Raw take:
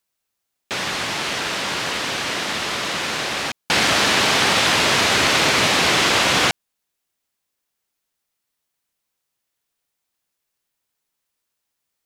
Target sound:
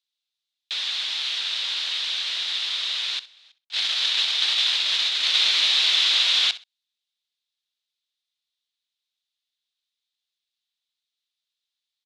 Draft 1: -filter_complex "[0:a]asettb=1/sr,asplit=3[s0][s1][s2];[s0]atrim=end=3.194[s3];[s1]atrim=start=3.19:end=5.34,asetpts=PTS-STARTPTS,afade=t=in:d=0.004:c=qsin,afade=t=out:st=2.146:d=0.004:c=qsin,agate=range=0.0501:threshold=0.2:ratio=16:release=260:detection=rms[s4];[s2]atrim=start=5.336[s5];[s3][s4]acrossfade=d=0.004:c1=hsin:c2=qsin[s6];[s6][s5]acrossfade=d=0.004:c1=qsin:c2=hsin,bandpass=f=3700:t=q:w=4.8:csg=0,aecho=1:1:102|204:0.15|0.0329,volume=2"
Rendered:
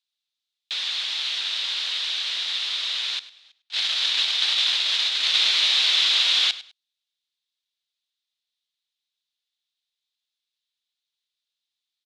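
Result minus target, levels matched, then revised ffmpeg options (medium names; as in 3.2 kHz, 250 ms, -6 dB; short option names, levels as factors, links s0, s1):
echo 38 ms late
-filter_complex "[0:a]asettb=1/sr,asplit=3[s0][s1][s2];[s0]atrim=end=3.194[s3];[s1]atrim=start=3.19:end=5.34,asetpts=PTS-STARTPTS,afade=t=in:d=0.004:c=qsin,afade=t=out:st=2.146:d=0.004:c=qsin,agate=range=0.0501:threshold=0.2:ratio=16:release=260:detection=rms[s4];[s2]atrim=start=5.336[s5];[s3][s4]acrossfade=d=0.004:c1=hsin:c2=qsin[s6];[s6][s5]acrossfade=d=0.004:c1=qsin:c2=hsin,bandpass=f=3700:t=q:w=4.8:csg=0,aecho=1:1:64|128:0.15|0.0329,volume=2"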